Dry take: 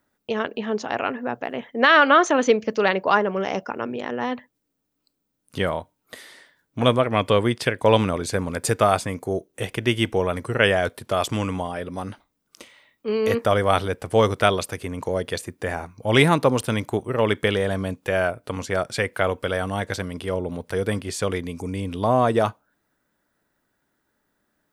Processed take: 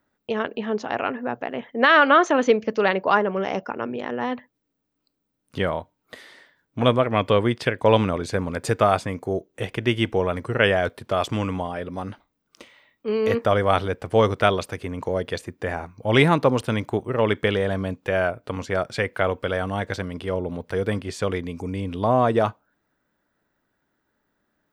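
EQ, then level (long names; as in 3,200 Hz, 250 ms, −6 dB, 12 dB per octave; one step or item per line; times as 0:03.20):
parametric band 11,000 Hz −11 dB 1.5 octaves
0.0 dB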